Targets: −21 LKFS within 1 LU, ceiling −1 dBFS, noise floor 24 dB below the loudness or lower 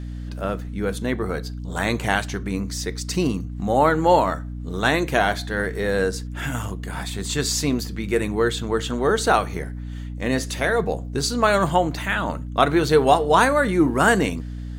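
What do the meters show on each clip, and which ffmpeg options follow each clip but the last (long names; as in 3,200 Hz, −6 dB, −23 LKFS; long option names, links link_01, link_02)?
mains hum 60 Hz; hum harmonics up to 300 Hz; level of the hum −29 dBFS; integrated loudness −22.0 LKFS; sample peak −3.0 dBFS; target loudness −21.0 LKFS
→ -af "bandreject=frequency=60:width_type=h:width=4,bandreject=frequency=120:width_type=h:width=4,bandreject=frequency=180:width_type=h:width=4,bandreject=frequency=240:width_type=h:width=4,bandreject=frequency=300:width_type=h:width=4"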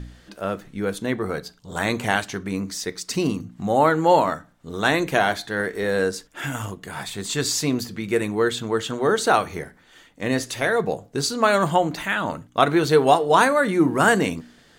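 mains hum none found; integrated loudness −22.0 LKFS; sample peak −2.5 dBFS; target loudness −21.0 LKFS
→ -af "volume=1dB"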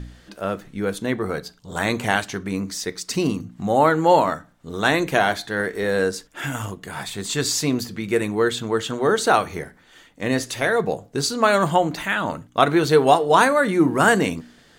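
integrated loudness −21.0 LKFS; sample peak −1.5 dBFS; background noise floor −53 dBFS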